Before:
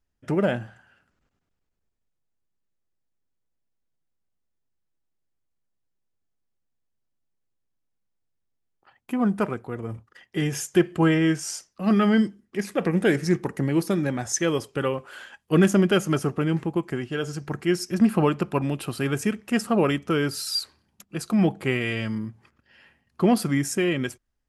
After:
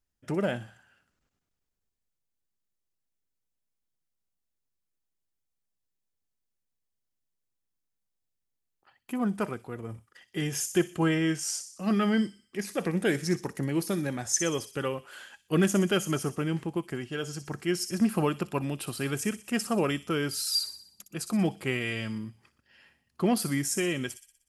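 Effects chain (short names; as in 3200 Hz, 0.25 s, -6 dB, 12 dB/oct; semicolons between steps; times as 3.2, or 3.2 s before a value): high shelf 3600 Hz +7.5 dB; on a send: thin delay 61 ms, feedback 52%, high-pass 4400 Hz, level -8 dB; on the sum: gain -6 dB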